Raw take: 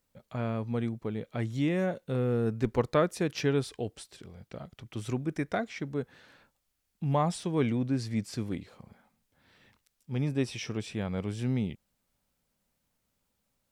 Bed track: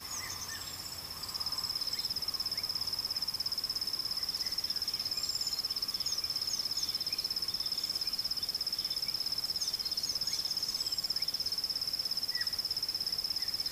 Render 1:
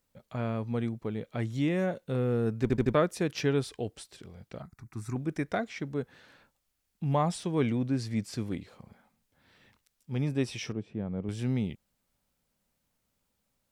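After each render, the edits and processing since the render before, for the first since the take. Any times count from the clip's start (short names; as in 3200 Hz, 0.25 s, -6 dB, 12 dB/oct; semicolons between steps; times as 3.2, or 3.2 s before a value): 2.62 stutter in place 0.08 s, 4 plays; 4.62–5.16 fixed phaser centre 1300 Hz, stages 4; 10.72–11.29 band-pass 220 Hz, Q 0.58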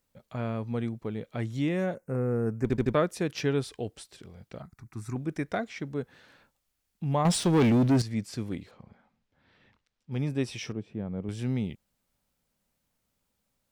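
1.95–2.65 Butterworth band-stop 3500 Hz, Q 0.92; 7.25–8.02 sample leveller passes 3; 8.71–10.12 air absorption 140 m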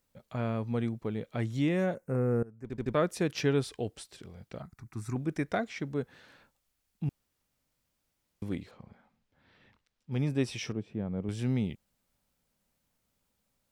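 2.43–3.09 fade in quadratic, from -21.5 dB; 7.09–8.42 room tone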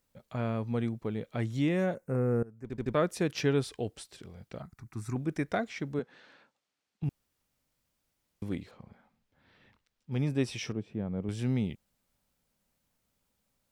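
5.99–7.03 BPF 210–5500 Hz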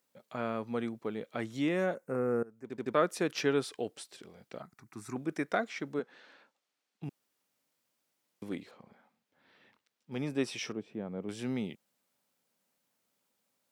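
HPF 250 Hz 12 dB/oct; dynamic EQ 1300 Hz, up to +4 dB, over -52 dBFS, Q 2.8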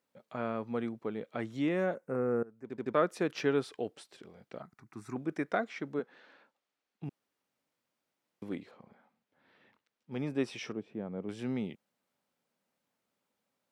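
high shelf 4100 Hz -10.5 dB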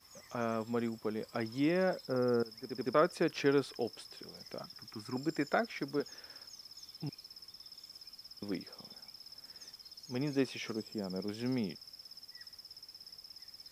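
add bed track -17.5 dB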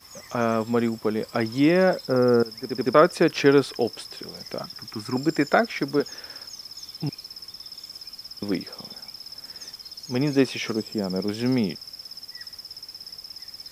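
gain +12 dB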